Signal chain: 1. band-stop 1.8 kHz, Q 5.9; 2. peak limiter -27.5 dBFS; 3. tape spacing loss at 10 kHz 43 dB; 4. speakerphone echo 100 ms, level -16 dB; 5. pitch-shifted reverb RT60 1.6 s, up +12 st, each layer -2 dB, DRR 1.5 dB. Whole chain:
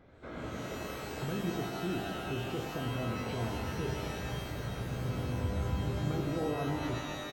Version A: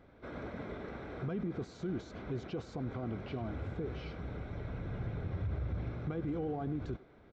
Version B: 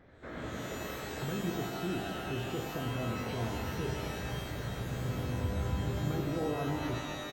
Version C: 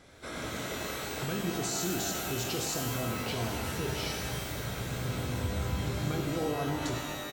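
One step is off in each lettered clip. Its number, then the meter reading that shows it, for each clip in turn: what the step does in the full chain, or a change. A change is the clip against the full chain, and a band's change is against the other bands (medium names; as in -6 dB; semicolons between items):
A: 5, 4 kHz band -9.5 dB; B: 1, 8 kHz band +1.5 dB; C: 3, 8 kHz band +12.0 dB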